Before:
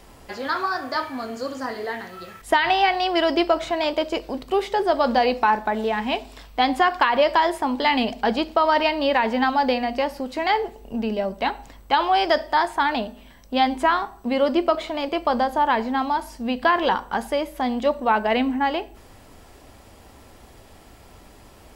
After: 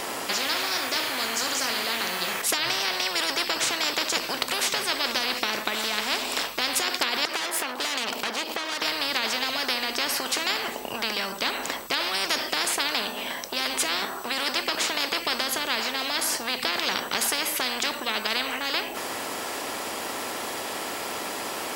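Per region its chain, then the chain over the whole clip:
7.25–8.82 s: treble shelf 9.8 kHz +8.5 dB + compression 3:1, threshold -34 dBFS + valve stage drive 36 dB, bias 0.75
whole clip: high-pass 410 Hz 12 dB/octave; spectrum-flattening compressor 10:1

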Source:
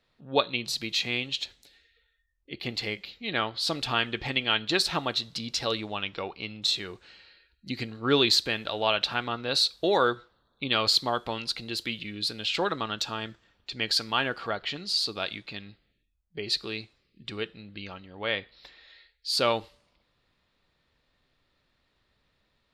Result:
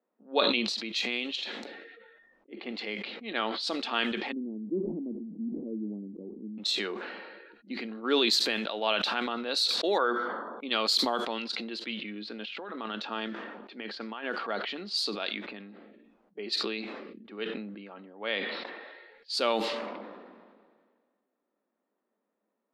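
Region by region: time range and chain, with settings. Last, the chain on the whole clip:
4.32–6.58 s: inverse Chebyshev low-pass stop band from 1.5 kHz, stop band 70 dB + tilt EQ -3.5 dB/octave
9.98–10.63 s: Savitzky-Golay filter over 41 samples + tilt EQ +2 dB/octave + hum notches 50/100/150/200/250 Hz
11.92–14.24 s: compressor with a negative ratio -33 dBFS + distance through air 58 m
whole clip: elliptic high-pass 210 Hz, stop band 40 dB; level-controlled noise filter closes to 860 Hz, open at -23.5 dBFS; decay stretcher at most 32 dB/s; trim -3 dB

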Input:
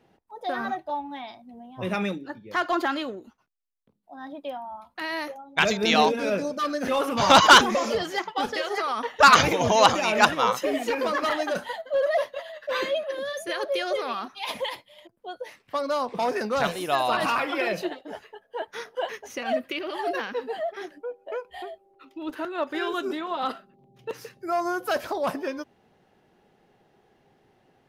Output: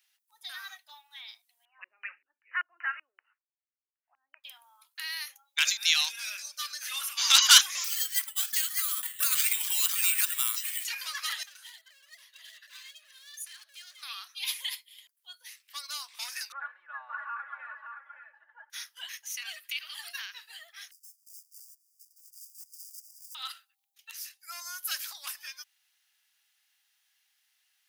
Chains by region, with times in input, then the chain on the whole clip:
1.65–4.44 s: peaking EQ 290 Hz +5 dB 1.8 oct + LFO low-pass square 2.6 Hz 290–1700 Hz + brick-wall FIR low-pass 3 kHz
7.84–10.85 s: high-pass 1 kHz + compression 12:1, threshold -22 dBFS + careless resampling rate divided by 4×, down filtered, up hold
11.43–14.03 s: treble shelf 8.3 kHz -5 dB + compression 20:1, threshold -36 dBFS + hard clipper -37.5 dBFS
16.52–18.70 s: Chebyshev band-pass 260–1600 Hz, order 4 + comb 3.5 ms, depth 93% + delay 570 ms -7 dB
20.91–23.35 s: dead-time distortion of 0.2 ms + compression 2:1, threshold -49 dBFS + brick-wall FIR band-stop 630–4700 Hz
whole clip: Bessel high-pass 1.9 kHz, order 4; differentiator; trim +8.5 dB

